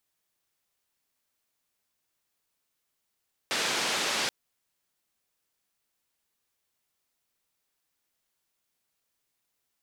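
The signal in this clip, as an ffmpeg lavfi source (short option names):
-f lavfi -i "anoisesrc=c=white:d=0.78:r=44100:seed=1,highpass=f=210,lowpass=f=5000,volume=-17.9dB"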